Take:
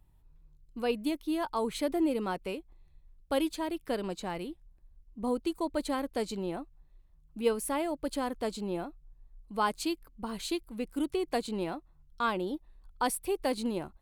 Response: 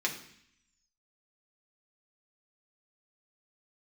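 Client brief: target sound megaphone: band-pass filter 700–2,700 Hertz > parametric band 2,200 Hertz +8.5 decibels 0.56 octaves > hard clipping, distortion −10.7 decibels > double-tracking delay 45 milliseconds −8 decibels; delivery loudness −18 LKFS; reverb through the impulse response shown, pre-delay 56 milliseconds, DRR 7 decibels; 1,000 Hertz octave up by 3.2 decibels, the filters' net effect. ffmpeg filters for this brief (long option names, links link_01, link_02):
-filter_complex "[0:a]equalizer=frequency=1000:width_type=o:gain=5,asplit=2[link_01][link_02];[1:a]atrim=start_sample=2205,adelay=56[link_03];[link_02][link_03]afir=irnorm=-1:irlink=0,volume=-13.5dB[link_04];[link_01][link_04]amix=inputs=2:normalize=0,highpass=700,lowpass=2700,equalizer=frequency=2200:width_type=o:width=0.56:gain=8.5,asoftclip=type=hard:threshold=-25dB,asplit=2[link_05][link_06];[link_06]adelay=45,volume=-8dB[link_07];[link_05][link_07]amix=inputs=2:normalize=0,volume=18dB"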